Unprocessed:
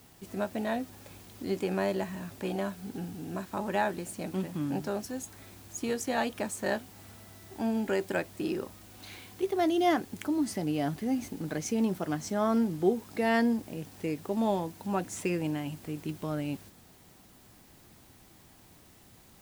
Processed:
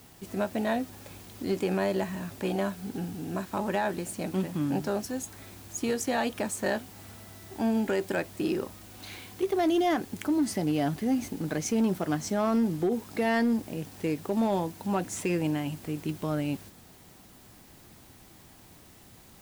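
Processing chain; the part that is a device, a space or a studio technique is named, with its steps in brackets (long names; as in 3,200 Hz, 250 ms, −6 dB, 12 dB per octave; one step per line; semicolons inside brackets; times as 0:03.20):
limiter into clipper (brickwall limiter −21.5 dBFS, peak gain reduction 8 dB; hard clipping −23.5 dBFS, distortion −26 dB)
level +3.5 dB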